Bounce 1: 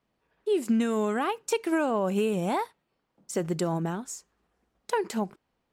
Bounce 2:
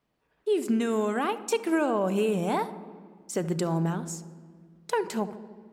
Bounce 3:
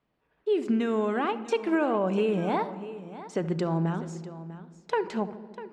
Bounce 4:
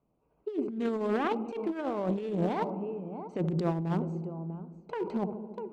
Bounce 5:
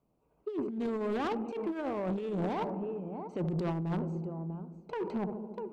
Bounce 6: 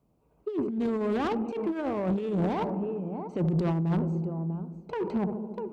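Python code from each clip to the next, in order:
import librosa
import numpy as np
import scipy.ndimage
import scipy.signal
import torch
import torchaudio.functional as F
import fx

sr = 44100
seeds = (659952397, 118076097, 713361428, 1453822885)

y1 = fx.echo_filtered(x, sr, ms=73, feedback_pct=79, hz=950.0, wet_db=-13.5)
y1 = fx.room_shoebox(y1, sr, seeds[0], volume_m3=3500.0, walls='mixed', distance_m=0.4)
y2 = scipy.signal.sosfilt(scipy.signal.butter(2, 3700.0, 'lowpass', fs=sr, output='sos'), y1)
y2 = y2 + 10.0 ** (-15.0 / 20.0) * np.pad(y2, (int(647 * sr / 1000.0), 0))[:len(y2)]
y3 = fx.wiener(y2, sr, points=25)
y3 = fx.over_compress(y3, sr, threshold_db=-29.0, ratio=-0.5)
y4 = 10.0 ** (-27.0 / 20.0) * np.tanh(y3 / 10.0 ** (-27.0 / 20.0))
y5 = scipy.signal.sosfilt(scipy.signal.butter(2, 41.0, 'highpass', fs=sr, output='sos'), y4)
y5 = fx.low_shelf(y5, sr, hz=180.0, db=7.5)
y5 = y5 * 10.0 ** (3.0 / 20.0)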